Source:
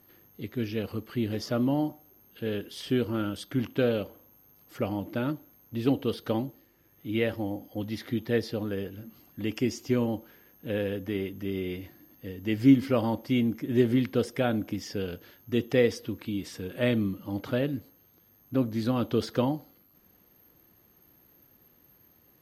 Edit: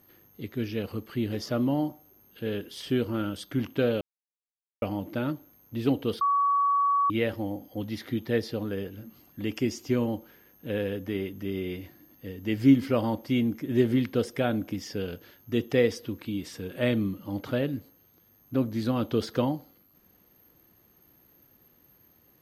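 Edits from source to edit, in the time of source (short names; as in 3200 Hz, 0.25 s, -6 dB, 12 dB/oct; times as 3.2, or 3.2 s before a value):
4.01–4.82 mute
6.21–7.1 bleep 1130 Hz -20.5 dBFS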